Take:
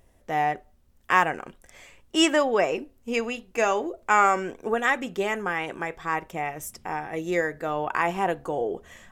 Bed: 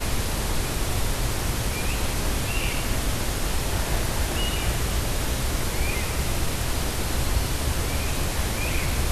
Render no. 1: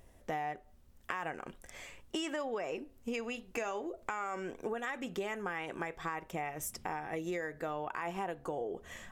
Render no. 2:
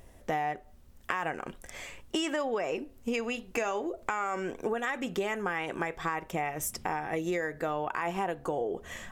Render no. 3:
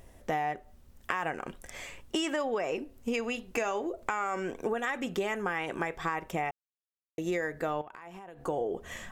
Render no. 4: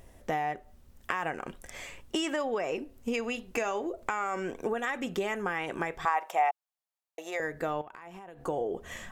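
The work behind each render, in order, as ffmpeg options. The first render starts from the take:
-af "alimiter=limit=-15.5dB:level=0:latency=1:release=35,acompressor=threshold=-35dB:ratio=6"
-af "volume=6dB"
-filter_complex "[0:a]asettb=1/sr,asplit=3[a][b][c];[a]atrim=end=7.814[d];[b]atrim=start=7.81:end=8.44,asetpts=PTS-STARTPTS,afade=t=in:d=0.004:c=qsin,afade=t=out:st=0.626:d=0.004:c=qsin,acompressor=threshold=-42dB:ratio=16:attack=3.2:release=140:knee=1:detection=peak[e];[c]atrim=start=8.436[f];[d][e]acrossfade=d=0.004:c1=hsin:c2=qsin[g];[g][f]acrossfade=d=0.004:c1=qsin:c2=hsin,asplit=3[h][i][j];[h]atrim=end=6.51,asetpts=PTS-STARTPTS,afade=t=out:st=6.506:d=0.004:c=hsin[k];[i]atrim=start=6.51:end=7.18,asetpts=PTS-STARTPTS,volume=0[l];[j]atrim=start=7.18,asetpts=PTS-STARTPTS,afade=t=in:d=0.004:c=hsin[m];[k][l][m]concat=n=3:v=0:a=1"
-filter_complex "[0:a]asettb=1/sr,asplit=3[a][b][c];[a]atrim=end=6.054[d];[b]atrim=start=6.05:end=7.4,asetpts=PTS-STARTPTS,afade=t=in:d=0.004:c=qsin,afade=t=out:st=1.346:d=0.004:c=qsin,highpass=f=750:t=q:w=2.8[e];[c]atrim=start=7.396[f];[d][e]acrossfade=d=0.004:c1=hsin:c2=qsin[g];[g][f]acrossfade=d=0.004:c1=qsin:c2=hsin"

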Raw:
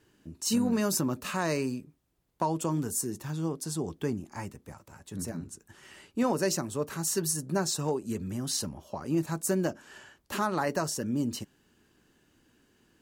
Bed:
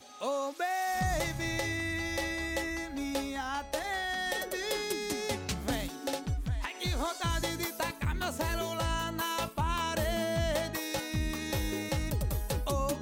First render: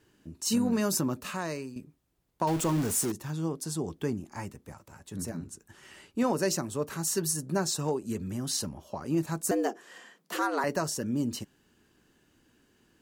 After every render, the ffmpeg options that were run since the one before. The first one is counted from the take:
-filter_complex "[0:a]asettb=1/sr,asplit=3[a][b][c];[a]atrim=end=2.474[d];[b]atrim=start=2.47:end=3.12,asetpts=PTS-STARTPTS,afade=t=in:d=0.004:c=qsin,afade=t=out:st=0.646:d=0.004:c=qsin,aeval=exprs='val(0)+0.5*0.0282*sgn(val(0))':c=same[e];[c]atrim=start=3.116[f];[d][e]acrossfade=d=0.004:c1=hsin:c2=qsin[g];[g][f]acrossfade=d=0.004:c1=qsin:c2=hsin,asettb=1/sr,asplit=3[h][i][j];[h]atrim=end=9.514[k];[i]atrim=start=9.51:end=10.64,asetpts=PTS-STARTPTS,afade=t=in:d=0.004:c=qsin,afade=t=out:st=1.126:d=0.004:c=qsin,afreqshift=120[l];[j]atrim=start=10.636[m];[k][l]acrossfade=d=0.004:c1=hsin:c2=qsin[n];[n][m]acrossfade=d=0.004:c1=qsin:c2=hsin,asplit=2[o][p];[o]atrim=end=1.76,asetpts=PTS-STARTPTS,afade=t=out:st=1.07:d=0.69:silence=0.251189[q];[p]atrim=start=1.76,asetpts=PTS-STARTPTS,afade=t=in:d=0.004:c=hsin:silence=0.251189[r];[q][r]concat=n=2:v=0:a=1"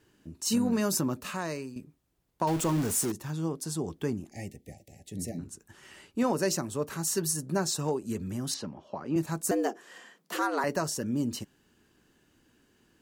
-filter_complex "[0:a]asettb=1/sr,asplit=3[a][b][c];[a]atrim=end=4.304[d];[b]atrim=start=4.3:end=5.39,asetpts=PTS-STARTPTS,afade=t=in:d=0.004:c=qsin,afade=t=out:st=1.086:d=0.004:c=qsin,asuperstop=centerf=1200:order=20:qfactor=1.2[e];[c]atrim=start=5.386[f];[d][e]acrossfade=d=0.004:c1=hsin:c2=qsin[g];[g][f]acrossfade=d=0.004:c1=qsin:c2=hsin,asettb=1/sr,asplit=3[h][i][j];[h]atrim=end=8.544[k];[i]atrim=start=8.54:end=9.16,asetpts=PTS-STARTPTS,afade=t=in:d=0.004:c=qsin,afade=t=out:st=0.616:d=0.004:c=qsin,highpass=150,lowpass=3.4k[l];[j]atrim=start=9.156[m];[k][l]acrossfade=d=0.004:c1=hsin:c2=qsin[n];[n][m]acrossfade=d=0.004:c1=qsin:c2=hsin"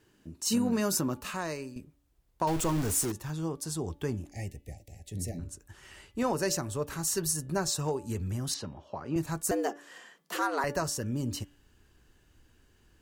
-af "asubboost=boost=7.5:cutoff=73,bandreject=f=288:t=h:w=4,bandreject=f=576:t=h:w=4,bandreject=f=864:t=h:w=4,bandreject=f=1.152k:t=h:w=4,bandreject=f=1.44k:t=h:w=4,bandreject=f=1.728k:t=h:w=4,bandreject=f=2.016k:t=h:w=4,bandreject=f=2.304k:t=h:w=4,bandreject=f=2.592k:t=h:w=4,bandreject=f=2.88k:t=h:w=4,bandreject=f=3.168k:t=h:w=4,bandreject=f=3.456k:t=h:w=4,bandreject=f=3.744k:t=h:w=4"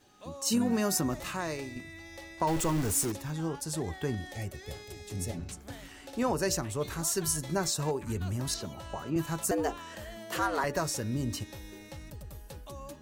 -filter_complex "[1:a]volume=-13dB[a];[0:a][a]amix=inputs=2:normalize=0"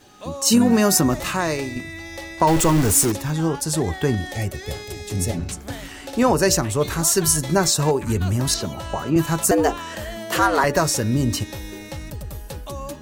-af "volume=12dB"

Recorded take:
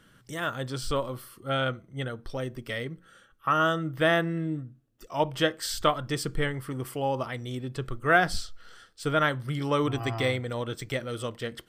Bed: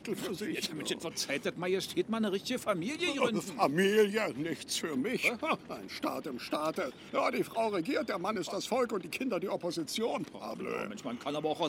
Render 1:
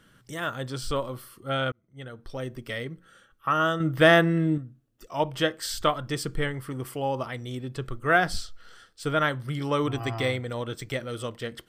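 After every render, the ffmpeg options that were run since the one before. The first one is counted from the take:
-filter_complex "[0:a]asettb=1/sr,asplit=3[a][b][c];[a]atrim=end=3.804[d];[b]atrim=start=3.8:end=4.58,asetpts=PTS-STARTPTS,afade=t=in:d=0.004:c=qsin,afade=t=out:st=0.776:d=0.004:c=qsin,acontrast=64[e];[c]atrim=start=4.576[f];[d][e]acrossfade=d=0.004:c1=hsin:c2=qsin[g];[g][f]acrossfade=d=0.004:c1=qsin:c2=hsin,asplit=2[h][i];[h]atrim=end=1.72,asetpts=PTS-STARTPTS,afade=t=out:st=1.716:d=0.004:c=hsin[j];[i]atrim=start=1.72,asetpts=PTS-STARTPTS,afade=t=in:d=0.77[k];[j][k]concat=n=2:v=0:a=1"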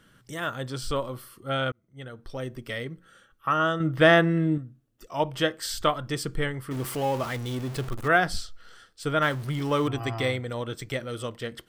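-filter_complex "[0:a]asettb=1/sr,asplit=3[a][b][c];[a]atrim=end=3.544[d];[b]atrim=start=3.54:end=4.58,asetpts=PTS-STARTPTS,afade=t=in:d=0.004:c=qsin,afade=t=out:st=1.036:d=0.004:c=qsin,highshelf=f=9k:g=-11.5[e];[c]atrim=start=4.576[f];[d][e]acrossfade=d=0.004:c1=hsin:c2=qsin[g];[g][f]acrossfade=d=0.004:c1=qsin:c2=hsin,asettb=1/sr,asplit=3[h][i][j];[h]atrim=end=6.714[k];[i]atrim=start=6.71:end=8.08,asetpts=PTS-STARTPTS,afade=t=in:d=0.004:c=qsin,afade=t=out:st=1.366:d=0.004:c=qsin,aeval=exprs='val(0)+0.5*0.0224*sgn(val(0))':c=same[l];[j]atrim=start=8.076[m];[k][l]acrossfade=d=0.004:c1=hsin:c2=qsin[n];[n][m]acrossfade=d=0.004:c1=qsin:c2=hsin,asettb=1/sr,asplit=3[o][p][q];[o]atrim=end=9.224[r];[p]atrim=start=9.22:end=9.88,asetpts=PTS-STARTPTS,afade=t=in:d=0.004:c=qsin,afade=t=out:st=0.656:d=0.004:c=qsin,aeval=exprs='val(0)+0.5*0.0141*sgn(val(0))':c=same[s];[q]atrim=start=9.876[t];[r][s]acrossfade=d=0.004:c1=hsin:c2=qsin[u];[u][t]acrossfade=d=0.004:c1=qsin:c2=hsin"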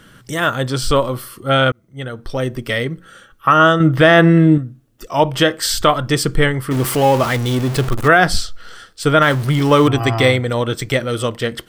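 -af "alimiter=level_in=13.5dB:limit=-1dB:release=50:level=0:latency=1"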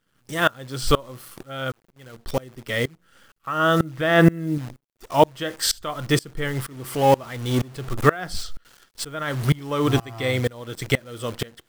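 -af "acrusher=bits=6:dc=4:mix=0:aa=0.000001,aeval=exprs='val(0)*pow(10,-26*if(lt(mod(-2.1*n/s,1),2*abs(-2.1)/1000),1-mod(-2.1*n/s,1)/(2*abs(-2.1)/1000),(mod(-2.1*n/s,1)-2*abs(-2.1)/1000)/(1-2*abs(-2.1)/1000))/20)':c=same"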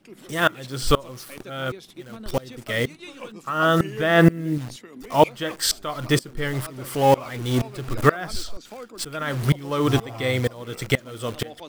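-filter_complex "[1:a]volume=-8.5dB[a];[0:a][a]amix=inputs=2:normalize=0"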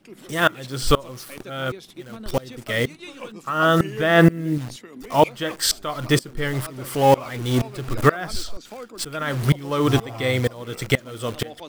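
-af "volume=1.5dB,alimiter=limit=-3dB:level=0:latency=1"

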